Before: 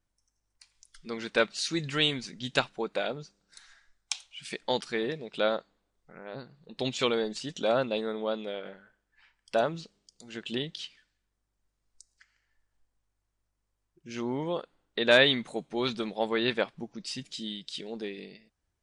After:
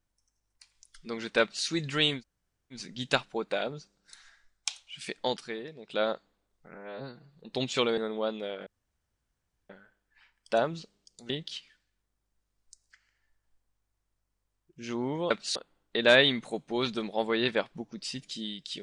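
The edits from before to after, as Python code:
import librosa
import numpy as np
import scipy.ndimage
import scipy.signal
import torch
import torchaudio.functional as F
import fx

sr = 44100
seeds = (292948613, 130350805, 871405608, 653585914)

y = fx.edit(x, sr, fx.duplicate(start_s=1.41, length_s=0.25, to_s=14.58),
    fx.insert_room_tone(at_s=2.19, length_s=0.56, crossfade_s=0.1),
    fx.fade_down_up(start_s=4.63, length_s=0.94, db=-9.5, fade_s=0.43),
    fx.stretch_span(start_s=6.18, length_s=0.39, factor=1.5),
    fx.cut(start_s=7.22, length_s=0.8),
    fx.insert_room_tone(at_s=8.71, length_s=1.03),
    fx.cut(start_s=10.31, length_s=0.26), tone=tone)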